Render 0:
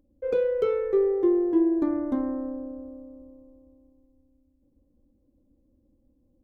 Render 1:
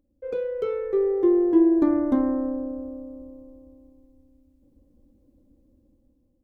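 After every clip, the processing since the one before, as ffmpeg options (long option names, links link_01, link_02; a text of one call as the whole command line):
ffmpeg -i in.wav -af "dynaudnorm=framelen=480:gausssize=5:maxgain=11dB,volume=-4.5dB" out.wav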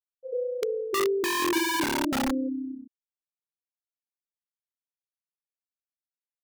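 ffmpeg -i in.wav -filter_complex "[0:a]afftfilt=real='re*gte(hypot(re,im),0.251)':imag='im*gte(hypot(re,im),0.251)':win_size=1024:overlap=0.75,highshelf=frequency=2200:gain=-9,acrossover=split=190|470[link_01][link_02][link_03];[link_02]aeval=exprs='(mod(13.3*val(0)+1,2)-1)/13.3':channel_layout=same[link_04];[link_01][link_04][link_03]amix=inputs=3:normalize=0,volume=-1dB" out.wav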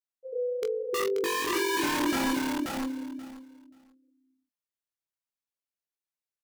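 ffmpeg -i in.wav -filter_complex "[0:a]flanger=delay=18:depth=2.6:speed=0.8,asplit=2[link_01][link_02];[link_02]adelay=24,volume=-13.5dB[link_03];[link_01][link_03]amix=inputs=2:normalize=0,aecho=1:1:532|1064|1596:0.708|0.113|0.0181" out.wav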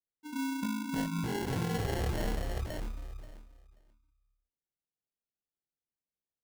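ffmpeg -i in.wav -af "flanger=delay=2.6:depth=2.2:regen=-73:speed=0.67:shape=triangular,lowpass=frequency=3300:width_type=q:width=0.5098,lowpass=frequency=3300:width_type=q:width=0.6013,lowpass=frequency=3300:width_type=q:width=0.9,lowpass=frequency=3300:width_type=q:width=2.563,afreqshift=-3900,acrusher=samples=36:mix=1:aa=0.000001" out.wav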